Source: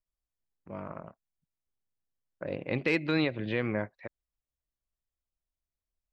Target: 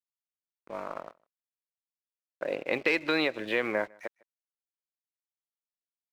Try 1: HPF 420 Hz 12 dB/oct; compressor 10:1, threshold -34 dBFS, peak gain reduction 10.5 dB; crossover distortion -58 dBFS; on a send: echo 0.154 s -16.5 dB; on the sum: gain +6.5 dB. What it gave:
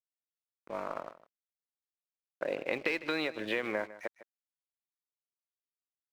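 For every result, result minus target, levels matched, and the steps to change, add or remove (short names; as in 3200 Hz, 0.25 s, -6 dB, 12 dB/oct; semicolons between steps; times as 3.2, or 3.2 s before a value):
echo-to-direct +10.5 dB; compressor: peak gain reduction +6.5 dB
change: echo 0.154 s -27 dB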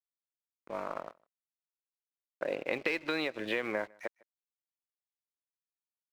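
compressor: peak gain reduction +6.5 dB
change: compressor 10:1, threshold -27 dBFS, peak gain reduction 4 dB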